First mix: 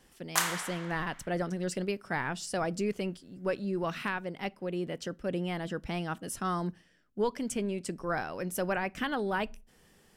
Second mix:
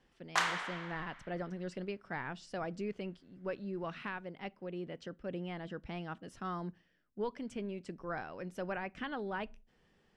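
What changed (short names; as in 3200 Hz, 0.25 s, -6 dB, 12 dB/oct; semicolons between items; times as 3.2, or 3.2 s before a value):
speech -7.5 dB; master: add LPF 3900 Hz 12 dB/oct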